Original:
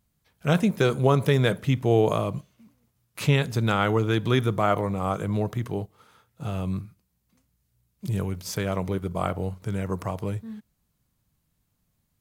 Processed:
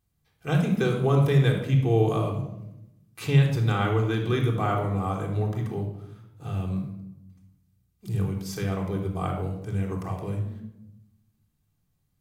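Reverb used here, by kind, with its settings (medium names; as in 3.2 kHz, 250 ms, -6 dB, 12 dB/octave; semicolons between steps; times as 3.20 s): simulated room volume 2500 m³, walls furnished, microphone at 3.7 m; trim -7 dB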